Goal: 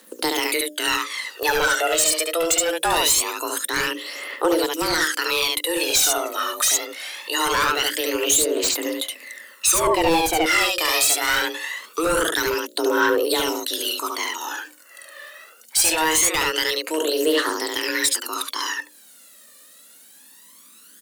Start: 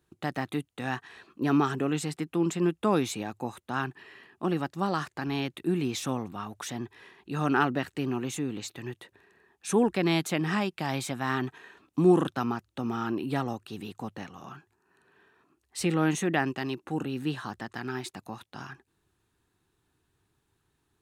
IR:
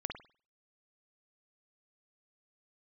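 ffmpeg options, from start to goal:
-filter_complex "[0:a]acontrast=47,asplit=2[a][b];[b]aecho=0:1:71:0.708[c];[a][c]amix=inputs=2:normalize=0,afreqshift=160,crystalizer=i=9.5:c=0,bandreject=f=60:t=h:w=6,bandreject=f=120:t=h:w=6,bandreject=f=180:t=h:w=6,bandreject=f=240:t=h:w=6,bandreject=f=300:t=h:w=6,bandreject=f=360:t=h:w=6,bandreject=f=420:t=h:w=6,bandreject=f=480:t=h:w=6,bandreject=f=540:t=h:w=6,bandreject=f=600:t=h:w=6,asoftclip=type=hard:threshold=-11.5dB,aphaser=in_gain=1:out_gain=1:delay=1.7:decay=0.65:speed=0.23:type=triangular,acompressor=threshold=-33dB:ratio=1.5,asettb=1/sr,asplit=3[d][e][f];[d]atrim=end=9.874[g];[e]atrim=start=9.87:end=10.46,asetpts=PTS-STARTPTS,afade=t=in:d=0.004:c=qsin,afade=t=out:st=0.586:d=0.004:c=qsin,tiltshelf=f=1.3k:g=9[h];[f]atrim=start=10.456[i];[g][h]acrossfade=d=0.004:c1=hsin:c2=qsin[j];[j][i]acrossfade=d=0.004:c1=qsin:c2=hsin,volume=3dB"

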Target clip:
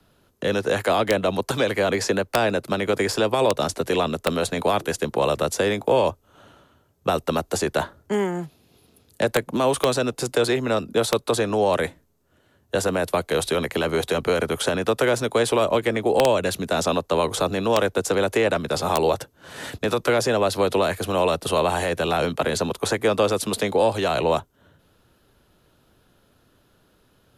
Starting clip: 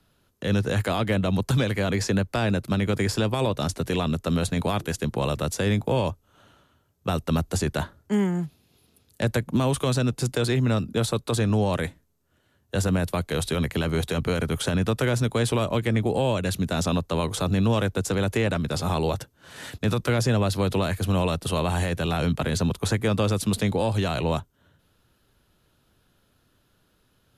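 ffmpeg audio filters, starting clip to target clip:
-filter_complex "[0:a]equalizer=f=510:t=o:w=2.5:g=5,acrossover=split=320|500|4900[a][b][c][d];[a]acompressor=threshold=-35dB:ratio=8[e];[e][b][c][d]amix=inputs=4:normalize=0,aeval=exprs='(mod(3.98*val(0)+1,2)-1)/3.98':c=same,volume=3dB"

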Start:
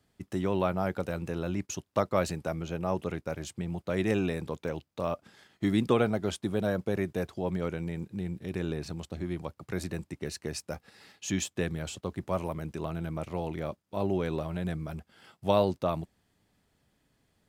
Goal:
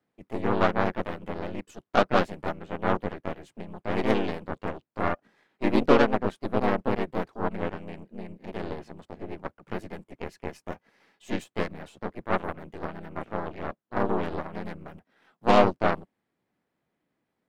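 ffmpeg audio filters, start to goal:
-filter_complex "[0:a]acrossover=split=150 2400:gain=0.141 1 0.224[a][b][c];[a][b][c]amix=inputs=3:normalize=0,aeval=exprs='0.251*(cos(1*acos(clip(val(0)/0.251,-1,1)))-cos(1*PI/2))+0.002*(cos(3*acos(clip(val(0)/0.251,-1,1)))-cos(3*PI/2))+0.0126*(cos(4*acos(clip(val(0)/0.251,-1,1)))-cos(4*PI/2))+0.0251*(cos(7*acos(clip(val(0)/0.251,-1,1)))-cos(7*PI/2))+0.0178*(cos(8*acos(clip(val(0)/0.251,-1,1)))-cos(8*PI/2))':c=same,asplit=2[d][e];[e]asetrate=52444,aresample=44100,atempo=0.840896,volume=-2dB[f];[d][f]amix=inputs=2:normalize=0,volume=4.5dB"

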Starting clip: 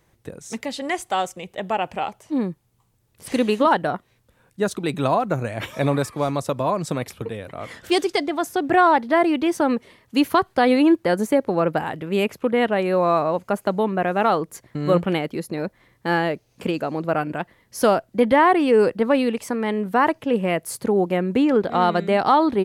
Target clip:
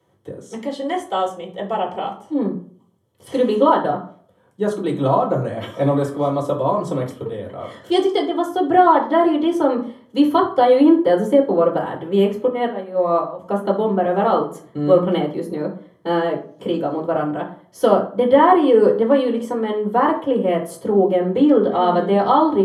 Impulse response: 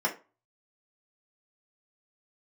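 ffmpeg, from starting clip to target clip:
-filter_complex "[0:a]asettb=1/sr,asplit=3[a][b][c];[a]atrim=end=12.474[d];[b]atrim=start=12.47:end=13.39,asetpts=PTS-STARTPTS,afade=t=in:d=0.004:c=qsin,afade=t=out:st=0.916:d=0.004:c=qsin,agate=range=-15dB:threshold=-17dB:ratio=16:detection=peak[e];[c]atrim=start=13.386[f];[d][e]acrossfade=d=0.004:c1=hsin:c2=qsin[g];[g][f]acrossfade=d=0.004:c1=qsin:c2=hsin[h];[1:a]atrim=start_sample=2205,asetrate=26019,aresample=44100[i];[h][i]afir=irnorm=-1:irlink=0,volume=-12dB"

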